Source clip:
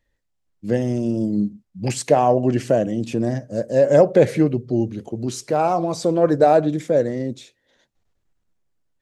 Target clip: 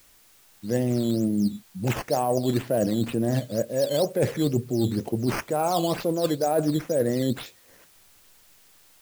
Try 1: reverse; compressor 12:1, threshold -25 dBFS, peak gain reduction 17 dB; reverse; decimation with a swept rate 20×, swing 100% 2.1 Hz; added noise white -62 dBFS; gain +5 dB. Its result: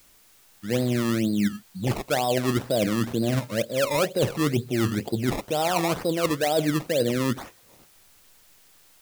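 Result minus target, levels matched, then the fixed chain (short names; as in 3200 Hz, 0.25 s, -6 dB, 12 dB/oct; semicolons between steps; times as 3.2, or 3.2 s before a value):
decimation with a swept rate: distortion +8 dB
reverse; compressor 12:1, threshold -25 dBFS, peak gain reduction 17 dB; reverse; decimation with a swept rate 8×, swing 100% 2.1 Hz; added noise white -62 dBFS; gain +5 dB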